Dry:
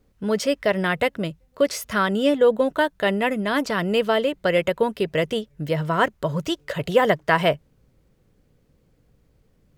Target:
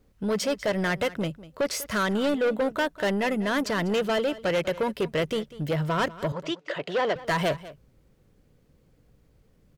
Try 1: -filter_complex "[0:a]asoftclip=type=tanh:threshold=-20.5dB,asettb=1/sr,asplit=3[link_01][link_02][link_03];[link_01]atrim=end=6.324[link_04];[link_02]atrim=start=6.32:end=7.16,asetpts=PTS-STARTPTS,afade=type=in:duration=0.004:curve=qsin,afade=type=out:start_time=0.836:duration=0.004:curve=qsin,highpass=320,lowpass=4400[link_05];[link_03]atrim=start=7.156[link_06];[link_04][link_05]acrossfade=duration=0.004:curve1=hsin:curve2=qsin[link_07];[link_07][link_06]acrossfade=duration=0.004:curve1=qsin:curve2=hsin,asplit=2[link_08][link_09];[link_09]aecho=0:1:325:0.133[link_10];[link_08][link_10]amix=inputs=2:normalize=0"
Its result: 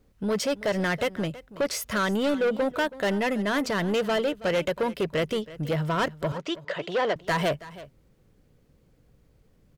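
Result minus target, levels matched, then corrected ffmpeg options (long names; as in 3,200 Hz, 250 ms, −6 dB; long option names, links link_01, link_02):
echo 129 ms late
-filter_complex "[0:a]asoftclip=type=tanh:threshold=-20.5dB,asettb=1/sr,asplit=3[link_01][link_02][link_03];[link_01]atrim=end=6.324[link_04];[link_02]atrim=start=6.32:end=7.16,asetpts=PTS-STARTPTS,afade=type=in:duration=0.004:curve=qsin,afade=type=out:start_time=0.836:duration=0.004:curve=qsin,highpass=320,lowpass=4400[link_05];[link_03]atrim=start=7.156[link_06];[link_04][link_05]acrossfade=duration=0.004:curve1=hsin:curve2=qsin[link_07];[link_07][link_06]acrossfade=duration=0.004:curve1=qsin:curve2=hsin,asplit=2[link_08][link_09];[link_09]aecho=0:1:196:0.133[link_10];[link_08][link_10]amix=inputs=2:normalize=0"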